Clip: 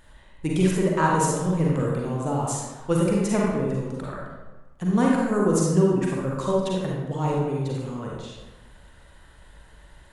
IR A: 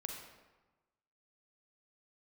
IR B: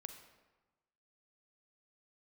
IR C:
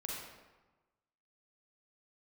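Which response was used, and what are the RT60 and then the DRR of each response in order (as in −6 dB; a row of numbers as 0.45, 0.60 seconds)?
C; 1.2, 1.2, 1.2 seconds; 1.5, 7.0, −3.5 decibels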